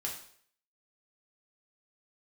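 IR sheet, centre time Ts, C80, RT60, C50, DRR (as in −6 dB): 28 ms, 10.0 dB, 0.60 s, 6.0 dB, −3.0 dB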